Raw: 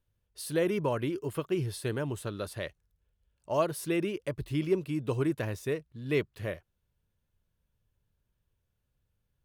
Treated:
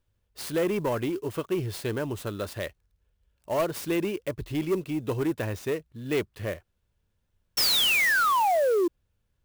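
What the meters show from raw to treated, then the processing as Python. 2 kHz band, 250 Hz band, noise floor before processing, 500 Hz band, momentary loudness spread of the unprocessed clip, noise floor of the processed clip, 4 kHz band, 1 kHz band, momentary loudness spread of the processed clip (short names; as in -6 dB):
+13.0 dB, +3.0 dB, -80 dBFS, +4.5 dB, 8 LU, -75 dBFS, +17.5 dB, +12.0 dB, 14 LU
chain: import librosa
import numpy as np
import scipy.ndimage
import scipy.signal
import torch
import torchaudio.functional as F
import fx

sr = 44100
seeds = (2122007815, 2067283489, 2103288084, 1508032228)

y = fx.spec_paint(x, sr, seeds[0], shape='fall', start_s=7.57, length_s=1.31, low_hz=330.0, high_hz=5600.0, level_db=-24.0)
y = 10.0 ** (-23.5 / 20.0) * np.tanh(y / 10.0 ** (-23.5 / 20.0))
y = fx.peak_eq(y, sr, hz=140.0, db=-6.0, octaves=0.4)
y = fx.clock_jitter(y, sr, seeds[1], jitter_ms=0.021)
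y = y * 10.0 ** (4.5 / 20.0)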